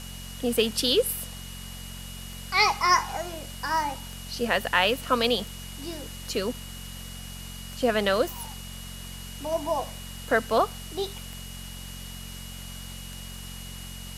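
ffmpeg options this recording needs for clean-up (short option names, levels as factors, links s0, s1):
-af "adeclick=t=4,bandreject=f=45.2:t=h:w=4,bandreject=f=90.4:t=h:w=4,bandreject=f=135.6:t=h:w=4,bandreject=f=180.8:t=h:w=4,bandreject=f=226:t=h:w=4,bandreject=f=2900:w=30,afwtdn=0.0071"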